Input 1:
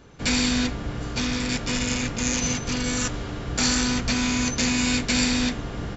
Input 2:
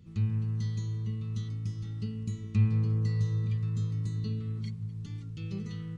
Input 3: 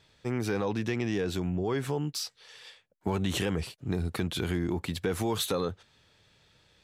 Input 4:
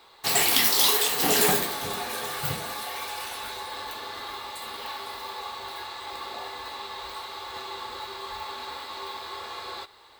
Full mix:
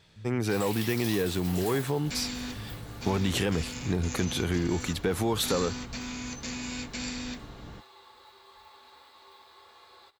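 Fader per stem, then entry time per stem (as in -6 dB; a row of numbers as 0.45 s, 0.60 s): -13.5 dB, -19.0 dB, +2.0 dB, -17.5 dB; 1.85 s, 0.00 s, 0.00 s, 0.25 s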